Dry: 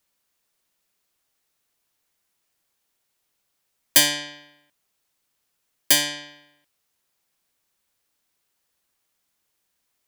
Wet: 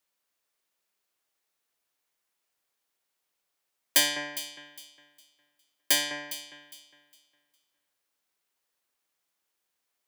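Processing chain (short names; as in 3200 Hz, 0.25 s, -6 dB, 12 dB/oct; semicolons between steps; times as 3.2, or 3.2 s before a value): tone controls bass -9 dB, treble -2 dB; on a send: echo with dull and thin repeats by turns 0.204 s, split 2300 Hz, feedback 51%, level -8 dB; on the sum: gain -5 dB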